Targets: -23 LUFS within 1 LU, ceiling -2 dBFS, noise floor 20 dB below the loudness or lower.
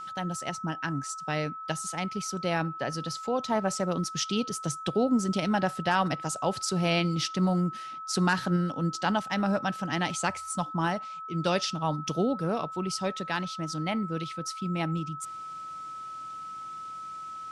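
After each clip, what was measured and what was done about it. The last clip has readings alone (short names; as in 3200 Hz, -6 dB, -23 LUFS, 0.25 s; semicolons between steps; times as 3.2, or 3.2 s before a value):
steady tone 1300 Hz; tone level -37 dBFS; loudness -30.0 LUFS; peak -12.0 dBFS; loudness target -23.0 LUFS
-> notch 1300 Hz, Q 30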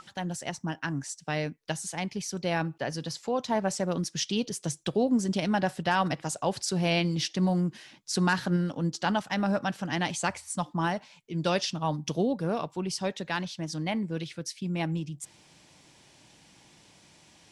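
steady tone none; loudness -30.0 LUFS; peak -12.5 dBFS; loudness target -23.0 LUFS
-> gain +7 dB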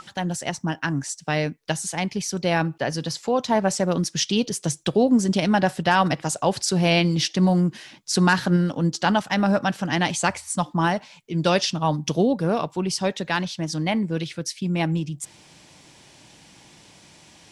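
loudness -23.0 LUFS; peak -5.5 dBFS; noise floor -52 dBFS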